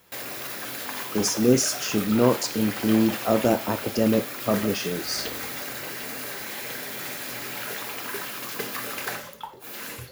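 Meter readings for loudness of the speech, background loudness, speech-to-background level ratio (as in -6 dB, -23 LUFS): -24.0 LUFS, -32.0 LUFS, 8.0 dB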